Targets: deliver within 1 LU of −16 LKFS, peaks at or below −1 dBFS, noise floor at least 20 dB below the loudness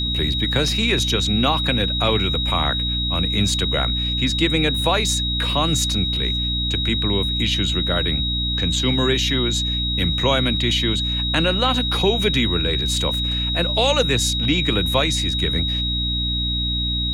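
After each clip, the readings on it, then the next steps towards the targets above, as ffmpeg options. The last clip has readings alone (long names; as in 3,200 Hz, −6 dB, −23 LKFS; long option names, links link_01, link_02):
mains hum 60 Hz; hum harmonics up to 300 Hz; level of the hum −23 dBFS; interfering tone 3,800 Hz; level of the tone −22 dBFS; integrated loudness −19.0 LKFS; sample peak −4.5 dBFS; target loudness −16.0 LKFS
→ -af "bandreject=frequency=60:width_type=h:width=4,bandreject=frequency=120:width_type=h:width=4,bandreject=frequency=180:width_type=h:width=4,bandreject=frequency=240:width_type=h:width=4,bandreject=frequency=300:width_type=h:width=4"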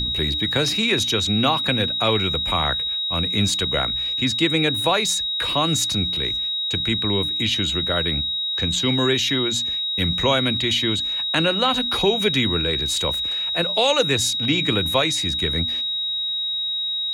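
mains hum none found; interfering tone 3,800 Hz; level of the tone −22 dBFS
→ -af "bandreject=frequency=3800:width=30"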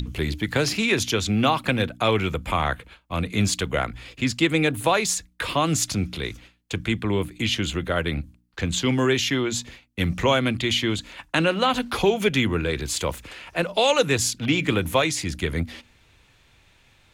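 interfering tone none found; integrated loudness −23.5 LKFS; sample peak −5.5 dBFS; target loudness −16.0 LKFS
→ -af "volume=7.5dB,alimiter=limit=-1dB:level=0:latency=1"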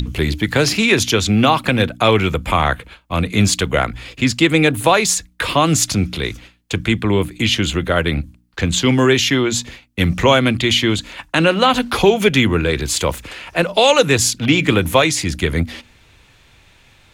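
integrated loudness −16.0 LKFS; sample peak −1.0 dBFS; background noise floor −51 dBFS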